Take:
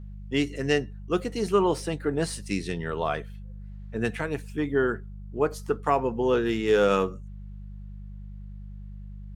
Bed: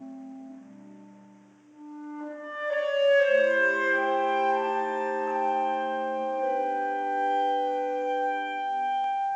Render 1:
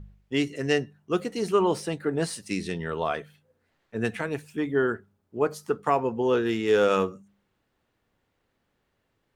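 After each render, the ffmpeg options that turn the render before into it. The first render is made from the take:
-af "bandreject=f=50:t=h:w=4,bandreject=f=100:t=h:w=4,bandreject=f=150:t=h:w=4,bandreject=f=200:t=h:w=4"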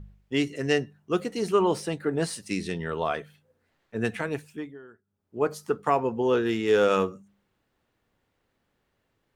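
-filter_complex "[0:a]asplit=3[s0][s1][s2];[s0]atrim=end=4.78,asetpts=PTS-STARTPTS,afade=t=out:st=4.35:d=0.43:silence=0.0668344[s3];[s1]atrim=start=4.78:end=5.04,asetpts=PTS-STARTPTS,volume=0.0668[s4];[s2]atrim=start=5.04,asetpts=PTS-STARTPTS,afade=t=in:d=0.43:silence=0.0668344[s5];[s3][s4][s5]concat=n=3:v=0:a=1"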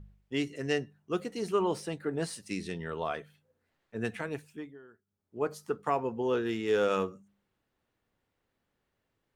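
-af "volume=0.501"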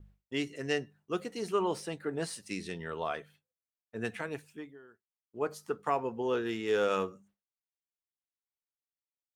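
-af "agate=range=0.0224:threshold=0.002:ratio=3:detection=peak,lowshelf=f=350:g=-4.5"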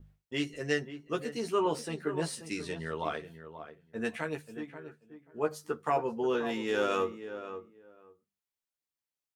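-filter_complex "[0:a]asplit=2[s0][s1];[s1]adelay=13,volume=0.631[s2];[s0][s2]amix=inputs=2:normalize=0,asplit=2[s3][s4];[s4]adelay=534,lowpass=f=1500:p=1,volume=0.299,asplit=2[s5][s6];[s6]adelay=534,lowpass=f=1500:p=1,volume=0.17[s7];[s3][s5][s7]amix=inputs=3:normalize=0"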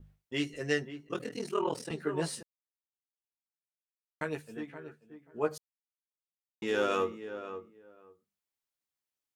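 -filter_complex "[0:a]asettb=1/sr,asplit=3[s0][s1][s2];[s0]atrim=end=1.074[s3];[s1]atrim=start=1.07:end=1.91,asetpts=PTS-STARTPTS,afade=t=in:d=0.004:c=qsin,afade=t=out:st=0.836:d=0.004:c=qsin,aeval=exprs='val(0)*sin(2*PI*20*n/s)':c=same[s4];[s2]atrim=start=1.906[s5];[s3][s4]acrossfade=d=0.004:c1=hsin:c2=qsin[s6];[s6][s5]acrossfade=d=0.004:c1=qsin:c2=hsin,asplit=5[s7][s8][s9][s10][s11];[s7]atrim=end=2.43,asetpts=PTS-STARTPTS,afade=t=out:st=2.426:d=0.004:c=hsin[s12];[s8]atrim=start=2.43:end=4.21,asetpts=PTS-STARTPTS,volume=0[s13];[s9]atrim=start=4.21:end=5.58,asetpts=PTS-STARTPTS,afade=t=in:d=0.004:c=hsin,afade=t=out:st=1.366:d=0.004:c=hsin[s14];[s10]atrim=start=5.58:end=6.62,asetpts=PTS-STARTPTS,volume=0[s15];[s11]atrim=start=6.62,asetpts=PTS-STARTPTS,afade=t=in:d=0.004:c=hsin[s16];[s12][s13][s14][s15][s16]concat=n=5:v=0:a=1"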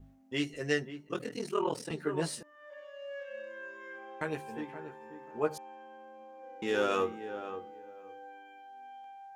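-filter_complex "[1:a]volume=0.0841[s0];[0:a][s0]amix=inputs=2:normalize=0"

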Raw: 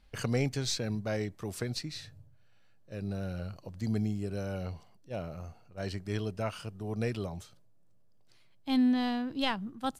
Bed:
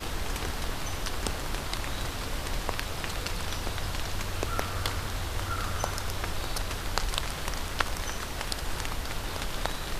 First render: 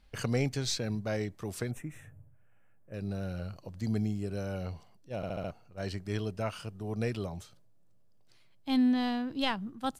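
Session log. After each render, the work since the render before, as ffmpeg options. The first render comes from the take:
-filter_complex "[0:a]asettb=1/sr,asplit=3[s0][s1][s2];[s0]atrim=end=1.714[s3];[s1]atrim=start=1.71:end=2.94,asetpts=PTS-STARTPTS,afade=t=in:d=0.004:c=qsin,afade=t=out:st=1.226:d=0.004:c=qsin,asuperstop=centerf=4500:order=4:qfactor=0.73[s4];[s2]atrim=start=2.936[s5];[s3][s4]acrossfade=d=0.004:c1=hsin:c2=qsin[s6];[s6][s5]acrossfade=d=0.004:c1=qsin:c2=hsin,asplit=6[s7][s8][s9][s10][s11][s12];[s7]atrim=end=5.232[s13];[s8]atrim=start=5.158:end=5.232[s14];[s9]atrim=start=5.158:end=5.232[s15];[s10]atrim=start=5.158:end=5.232[s16];[s11]atrim=start=5.158:end=5.232[s17];[s12]atrim=start=5.508[s18];[s13][s14]acrossfade=d=0.004:c1=hsin:c2=hsin[s19];[s19][s15]acrossfade=d=0.004:c1=hsin:c2=hsin[s20];[s20][s16]acrossfade=d=0.004:c1=hsin:c2=hsin[s21];[s21][s17]acrossfade=d=0.004:c1=hsin:c2=hsin[s22];[s22][s18]acrossfade=d=0.004:c1=hsin:c2=hsin"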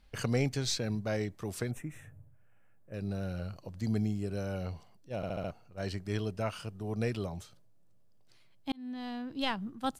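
-filter_complex "[0:a]asplit=2[s0][s1];[s0]atrim=end=8.72,asetpts=PTS-STARTPTS,afade=t=out:st=8.716:d=0.004:c=hsin[s2];[s1]atrim=start=8.72,asetpts=PTS-STARTPTS,afade=t=in:d=0.93[s3];[s2][s3]concat=n=2:v=0:a=1"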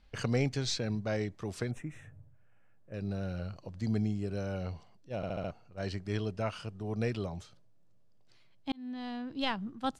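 -af "lowpass=6700"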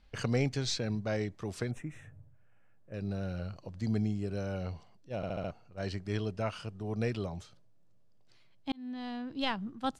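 -af anull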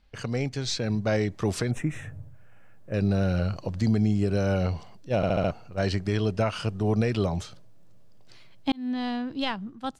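-af "dynaudnorm=f=160:g=13:m=4.47,alimiter=limit=0.188:level=0:latency=1:release=203"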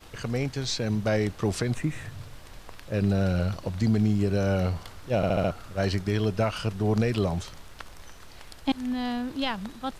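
-filter_complex "[1:a]volume=0.188[s0];[0:a][s0]amix=inputs=2:normalize=0"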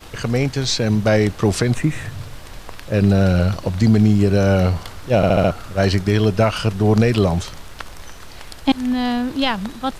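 -af "volume=2.99"

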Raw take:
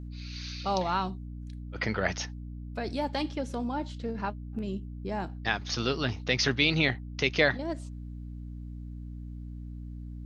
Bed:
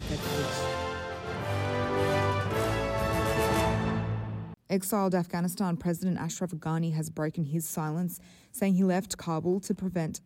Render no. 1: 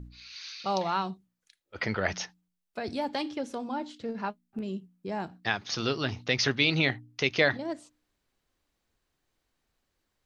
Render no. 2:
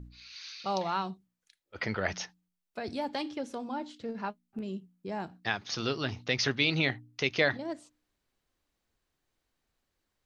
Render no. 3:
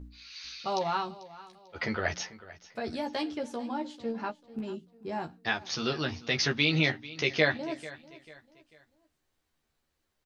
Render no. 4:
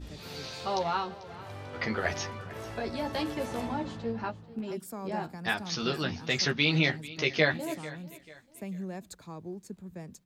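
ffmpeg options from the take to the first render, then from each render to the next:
-af "bandreject=f=60:t=h:w=4,bandreject=f=120:t=h:w=4,bandreject=f=180:t=h:w=4,bandreject=f=240:t=h:w=4,bandreject=f=300:t=h:w=4"
-af "volume=0.75"
-filter_complex "[0:a]asplit=2[s0][s1];[s1]adelay=13,volume=0.631[s2];[s0][s2]amix=inputs=2:normalize=0,aecho=1:1:443|886|1329:0.126|0.0466|0.0172"
-filter_complex "[1:a]volume=0.237[s0];[0:a][s0]amix=inputs=2:normalize=0"

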